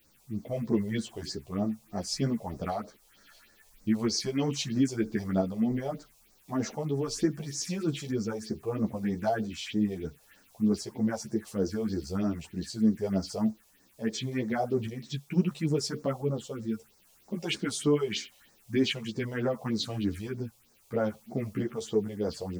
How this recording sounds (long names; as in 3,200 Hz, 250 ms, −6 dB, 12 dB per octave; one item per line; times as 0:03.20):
a quantiser's noise floor 10 bits, dither triangular
phaser sweep stages 4, 3.2 Hz, lowest notch 250–3,000 Hz
tremolo saw up 0.74 Hz, depth 30%
a shimmering, thickened sound